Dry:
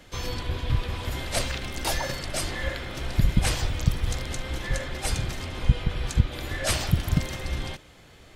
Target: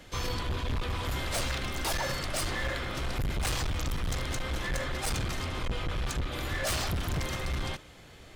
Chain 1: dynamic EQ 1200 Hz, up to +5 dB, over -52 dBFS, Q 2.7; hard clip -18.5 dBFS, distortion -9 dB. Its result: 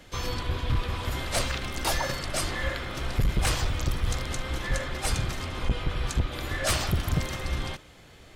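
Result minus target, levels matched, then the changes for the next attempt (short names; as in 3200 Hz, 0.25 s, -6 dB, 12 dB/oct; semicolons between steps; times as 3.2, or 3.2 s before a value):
hard clip: distortion -5 dB
change: hard clip -27.5 dBFS, distortion -4 dB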